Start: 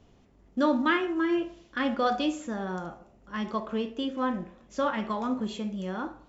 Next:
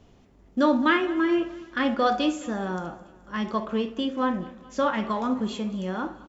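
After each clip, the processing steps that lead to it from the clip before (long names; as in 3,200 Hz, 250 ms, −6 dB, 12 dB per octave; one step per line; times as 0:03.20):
repeating echo 213 ms, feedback 51%, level −20 dB
level +3.5 dB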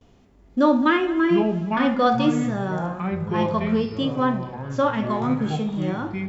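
delay with pitch and tempo change per echo 497 ms, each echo −6 semitones, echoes 3, each echo −6 dB
harmonic and percussive parts rebalanced harmonic +7 dB
noise gate with hold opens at −46 dBFS
level −3.5 dB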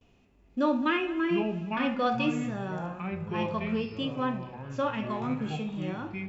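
parametric band 2,600 Hz +13 dB 0.27 octaves
level −8.5 dB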